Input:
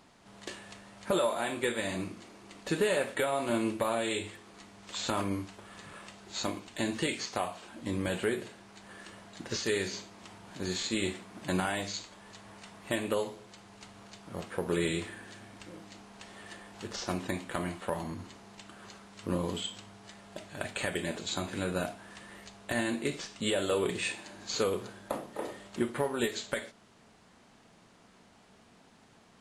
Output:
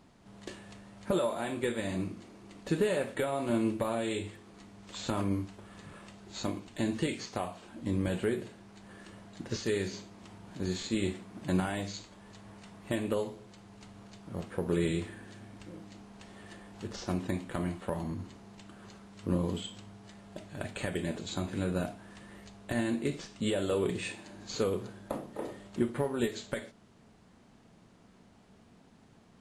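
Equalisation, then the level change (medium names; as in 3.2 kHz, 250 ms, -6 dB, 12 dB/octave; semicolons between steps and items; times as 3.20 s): bass shelf 420 Hz +10.5 dB; -5.5 dB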